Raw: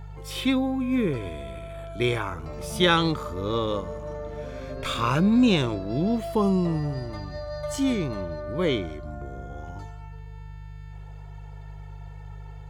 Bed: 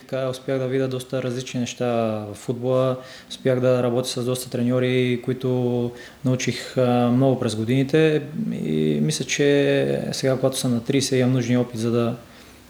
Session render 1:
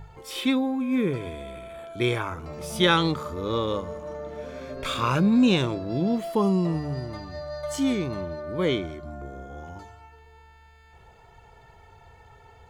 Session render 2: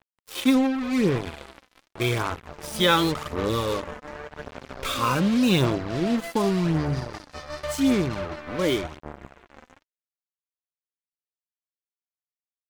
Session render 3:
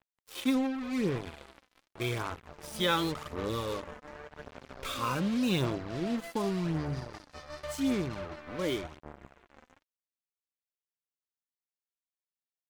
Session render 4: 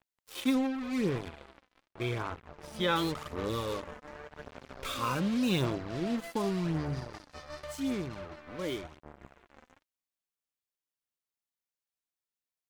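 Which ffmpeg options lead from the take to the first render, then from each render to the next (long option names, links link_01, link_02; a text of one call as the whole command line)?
ffmpeg -i in.wav -af "bandreject=frequency=50:width_type=h:width=4,bandreject=frequency=100:width_type=h:width=4,bandreject=frequency=150:width_type=h:width=4" out.wav
ffmpeg -i in.wav -af "acrusher=bits=4:mix=0:aa=0.5,aphaser=in_gain=1:out_gain=1:delay=4:decay=0.4:speed=0.88:type=sinusoidal" out.wav
ffmpeg -i in.wav -af "volume=-8.5dB" out.wav
ffmpeg -i in.wav -filter_complex "[0:a]asettb=1/sr,asplit=3[link_01][link_02][link_03];[link_01]atrim=end=1.284[link_04];[link_02]atrim=start=1.28:end=2.96,asetpts=PTS-STARTPTS,afade=type=in:duration=0.004:curve=qsin,afade=type=out:start_time=1.676:duration=0.004:curve=qsin,lowpass=frequency=2900:poles=1[link_05];[link_03]atrim=start=2.956[link_06];[link_04][link_05]acrossfade=duration=0.004:curve1=hsin:curve2=qsin[link_07];[link_07][link_06]acrossfade=duration=0.004:curve1=qsin:curve2=hsin,asplit=3[link_08][link_09][link_10];[link_08]atrim=end=7.642[link_11];[link_09]atrim=start=7.638:end=9.202,asetpts=PTS-STARTPTS,volume=-3.5dB[link_12];[link_10]atrim=start=9.198[link_13];[link_11][link_12]acrossfade=duration=0.004:curve1=hsin:curve2=hsin[link_14];[link_14][link_13]acrossfade=duration=0.004:curve1=hsin:curve2=hsin" out.wav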